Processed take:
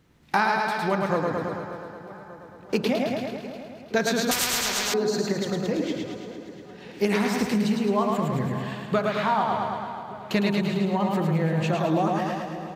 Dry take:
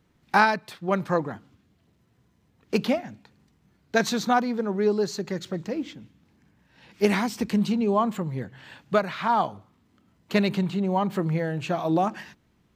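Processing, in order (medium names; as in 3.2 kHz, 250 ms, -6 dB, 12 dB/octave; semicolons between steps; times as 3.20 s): feedback delay 108 ms, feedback 57%, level -4 dB; compression 2.5:1, threshold -27 dBFS, peak gain reduction 9.5 dB; de-hum 46.63 Hz, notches 35; on a send: two-band feedback delay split 1.8 kHz, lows 588 ms, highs 347 ms, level -14 dB; on the sum: vibrato 15 Hz 26 cents; 4.31–4.94 s: spectrum-flattening compressor 10:1; trim +5 dB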